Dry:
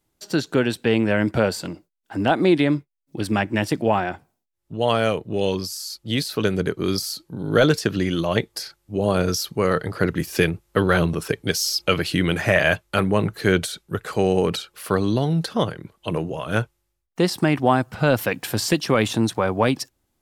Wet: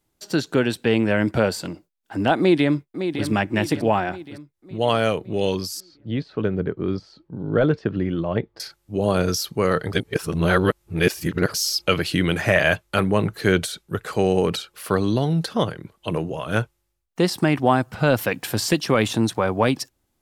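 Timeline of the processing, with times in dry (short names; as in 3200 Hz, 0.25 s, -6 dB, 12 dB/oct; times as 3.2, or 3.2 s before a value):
2.38–3.25 echo throw 0.56 s, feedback 50%, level -8.5 dB
5.8–8.6 tape spacing loss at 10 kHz 44 dB
9.93–11.54 reverse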